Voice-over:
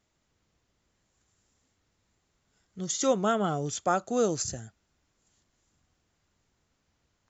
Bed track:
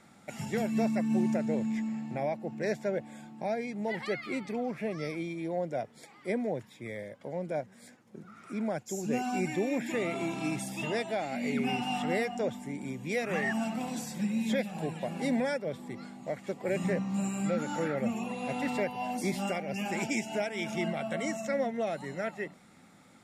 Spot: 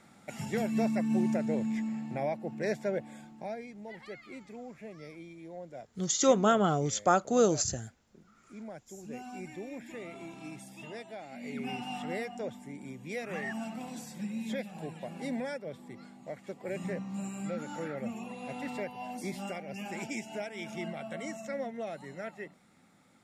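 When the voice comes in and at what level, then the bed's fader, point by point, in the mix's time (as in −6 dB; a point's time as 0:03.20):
3.20 s, +1.5 dB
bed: 0:03.11 −0.5 dB
0:03.84 −11.5 dB
0:11.26 −11.5 dB
0:11.70 −6 dB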